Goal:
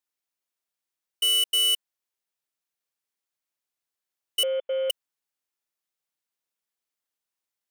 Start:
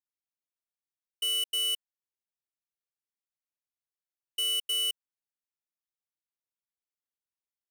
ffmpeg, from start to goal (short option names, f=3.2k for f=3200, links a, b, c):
-filter_complex "[0:a]asettb=1/sr,asplit=3[a][b][c];[a]atrim=end=4.434[d];[b]atrim=start=4.43:end=4.9,asetpts=PTS-STARTPTS,afade=t=in:d=0.004:c=qsin,afade=t=out:st=0.466:d=0.004:c=qsin,lowpass=f=3k:t=q:w=0.5098,lowpass=f=3k:t=q:w=0.6013,lowpass=f=3k:t=q:w=0.9,lowpass=f=3k:t=q:w=2.563,afreqshift=-3500[e];[c]atrim=start=4.896[f];[d][e]acrossfade=d=0.004:c1=hsin:c2=qsin[g];[g][f]acrossfade=d=0.004:c1=qsin:c2=hsin,lowshelf=f=170:g=-10,volume=7dB"